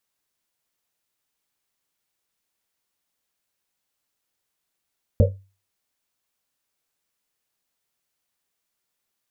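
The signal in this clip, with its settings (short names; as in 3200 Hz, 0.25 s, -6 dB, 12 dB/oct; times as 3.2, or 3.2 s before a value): Risset drum, pitch 97 Hz, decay 0.34 s, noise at 520 Hz, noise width 110 Hz, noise 45%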